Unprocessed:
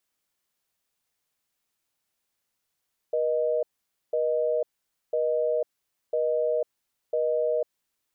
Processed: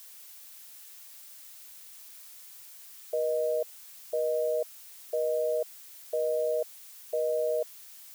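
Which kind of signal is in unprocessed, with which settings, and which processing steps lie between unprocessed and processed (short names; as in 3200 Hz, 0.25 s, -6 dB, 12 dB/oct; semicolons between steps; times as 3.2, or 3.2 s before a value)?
call progress tone busy tone, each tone -25 dBFS 4.60 s
tilt +3.5 dB/oct; added noise blue -49 dBFS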